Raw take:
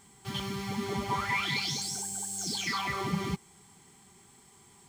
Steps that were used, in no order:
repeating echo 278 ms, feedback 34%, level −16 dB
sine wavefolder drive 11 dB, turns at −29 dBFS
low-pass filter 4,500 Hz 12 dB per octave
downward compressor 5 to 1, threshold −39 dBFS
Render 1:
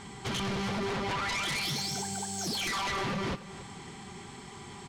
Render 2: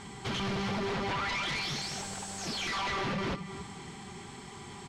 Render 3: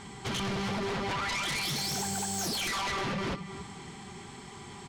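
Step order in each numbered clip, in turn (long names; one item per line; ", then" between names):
downward compressor, then low-pass filter, then sine wavefolder, then repeating echo
downward compressor, then repeating echo, then sine wavefolder, then low-pass filter
low-pass filter, then downward compressor, then repeating echo, then sine wavefolder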